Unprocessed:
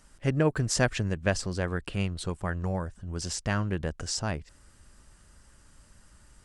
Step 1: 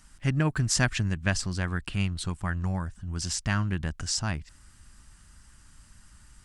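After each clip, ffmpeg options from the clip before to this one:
-af "equalizer=f=490:t=o:w=1:g=-14,volume=3dB"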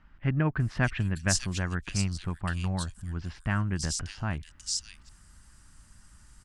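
-filter_complex "[0:a]acrossover=split=2900[a][b];[b]adelay=600[c];[a][c]amix=inputs=2:normalize=0,volume=-1dB"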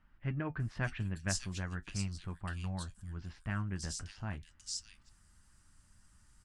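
-af "flanger=delay=8.9:depth=1.5:regen=-57:speed=0.42:shape=triangular,volume=-5dB"

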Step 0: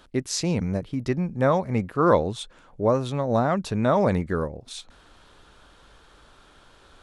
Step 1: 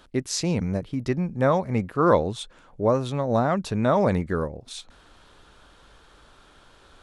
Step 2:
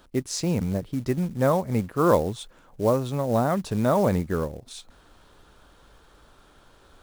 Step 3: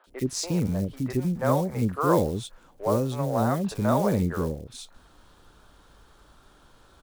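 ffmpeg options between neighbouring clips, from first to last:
-af anull
-af "acrusher=bits=5:mode=log:mix=0:aa=0.000001,equalizer=f=2.8k:t=o:w=2.5:g=-4.5"
-filter_complex "[0:a]acrossover=split=500|2300[a][b][c];[c]adelay=40[d];[a]adelay=70[e];[e][b][d]amix=inputs=3:normalize=0"

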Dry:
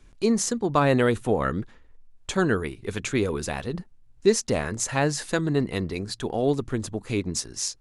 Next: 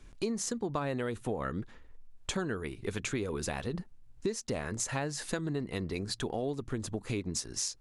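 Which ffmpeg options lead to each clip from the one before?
-af "acompressor=threshold=-31dB:ratio=6"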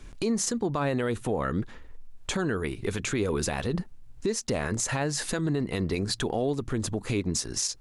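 -af "alimiter=level_in=2.5dB:limit=-24dB:level=0:latency=1:release=25,volume=-2.5dB,volume=8dB"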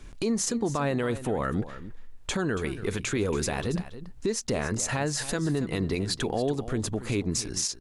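-af "aecho=1:1:280:0.2"

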